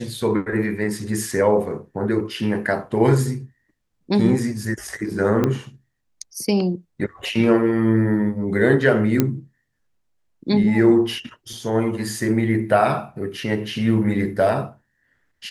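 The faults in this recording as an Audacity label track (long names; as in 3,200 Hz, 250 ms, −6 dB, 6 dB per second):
5.440000	5.440000	click −8 dBFS
9.200000	9.200000	click −4 dBFS
11.530000	11.530000	drop-out 2.7 ms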